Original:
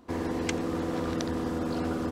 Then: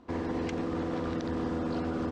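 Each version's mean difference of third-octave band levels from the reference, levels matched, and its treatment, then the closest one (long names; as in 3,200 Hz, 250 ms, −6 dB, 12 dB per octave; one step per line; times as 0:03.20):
3.0 dB: brickwall limiter −23.5 dBFS, peak gain reduction 8 dB
high-frequency loss of the air 100 metres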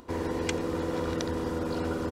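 1.5 dB: comb filter 2.1 ms, depth 34%
upward compression, threshold −46 dBFS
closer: second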